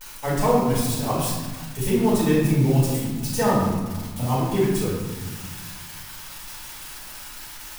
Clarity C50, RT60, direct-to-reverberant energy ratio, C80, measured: −0.5 dB, 1.5 s, −12.0 dB, 2.5 dB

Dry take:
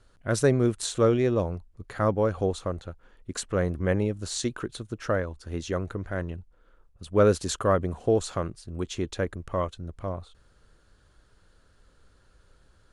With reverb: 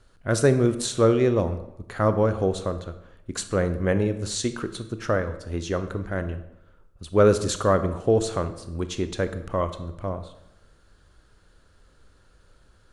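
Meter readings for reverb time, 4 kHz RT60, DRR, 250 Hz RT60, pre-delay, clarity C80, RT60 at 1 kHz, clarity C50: 0.85 s, 0.65 s, 10.0 dB, 0.85 s, 25 ms, 14.5 dB, 0.85 s, 12.0 dB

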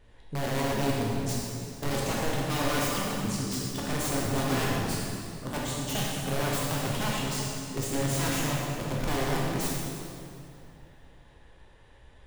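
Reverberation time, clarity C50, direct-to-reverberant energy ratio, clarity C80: 2.6 s, −2.5 dB, −5.0 dB, −0.5 dB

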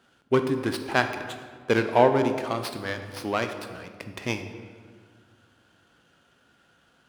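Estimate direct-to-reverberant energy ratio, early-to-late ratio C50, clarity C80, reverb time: 7.0 dB, 8.5 dB, 10.0 dB, 1.8 s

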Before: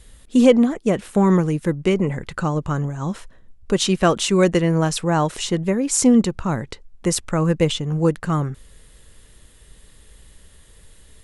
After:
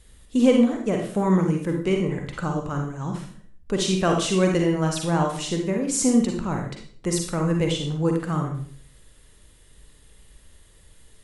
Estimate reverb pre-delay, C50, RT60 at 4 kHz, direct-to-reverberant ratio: 38 ms, 3.5 dB, 0.45 s, 1.5 dB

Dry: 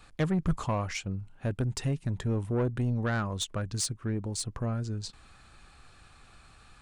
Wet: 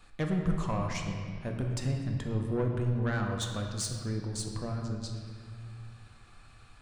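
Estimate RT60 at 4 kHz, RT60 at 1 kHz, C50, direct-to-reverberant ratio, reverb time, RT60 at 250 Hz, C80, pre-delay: 1.5 s, 2.2 s, 3.5 dB, 1.5 dB, 2.2 s, 2.8 s, 4.5 dB, 3 ms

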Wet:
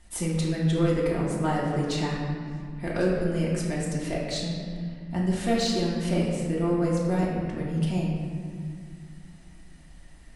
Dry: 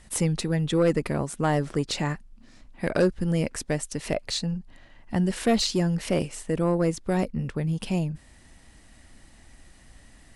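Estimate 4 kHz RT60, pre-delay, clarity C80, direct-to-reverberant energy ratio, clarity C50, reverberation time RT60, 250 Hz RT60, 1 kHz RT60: 1.3 s, 3 ms, 2.5 dB, −5.5 dB, 0.5 dB, 2.1 s, 3.0 s, 2.0 s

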